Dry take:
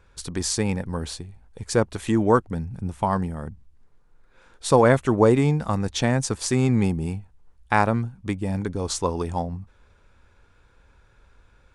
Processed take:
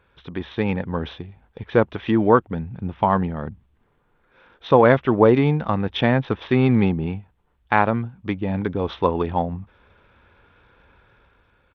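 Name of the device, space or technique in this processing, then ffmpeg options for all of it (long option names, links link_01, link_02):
Bluetooth headset: -af "highpass=frequency=130:poles=1,dynaudnorm=framelen=140:gausssize=9:maxgain=6.5dB,aresample=8000,aresample=44100" -ar 32000 -c:a sbc -b:a 64k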